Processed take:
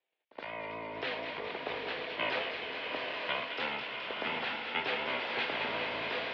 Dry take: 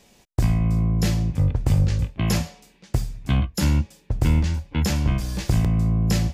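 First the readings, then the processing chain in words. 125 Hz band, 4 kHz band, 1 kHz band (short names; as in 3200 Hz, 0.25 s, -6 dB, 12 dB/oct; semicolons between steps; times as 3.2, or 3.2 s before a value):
-37.0 dB, -1.0 dB, 0.0 dB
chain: gate -51 dBFS, range -23 dB; high shelf 2500 Hz +9 dB; limiter -16.5 dBFS, peak gain reduction 9.5 dB; AGC gain up to 8 dB; vibrato 4.2 Hz 53 cents; air absorption 170 m; on a send: thin delay 0.212 s, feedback 73%, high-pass 1600 Hz, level -6 dB; on the sum: mistuned SSB -71 Hz 480–3600 Hz; pre-echo 71 ms -18 dB; bloom reverb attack 0.91 s, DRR 1.5 dB; gain -5.5 dB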